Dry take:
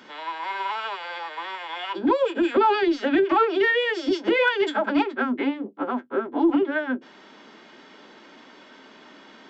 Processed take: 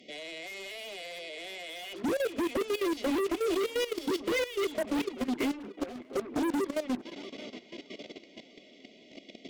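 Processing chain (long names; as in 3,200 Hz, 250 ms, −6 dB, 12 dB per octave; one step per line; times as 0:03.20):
linear-phase brick-wall band-stop 750–1,900 Hz
hard clipping −27.5 dBFS, distortion −5 dB
harmonic generator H 5 −11 dB, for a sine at −27.5 dBFS
tape delay 636 ms, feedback 60%, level −15 dB, low-pass 3,400 Hz
output level in coarse steps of 14 dB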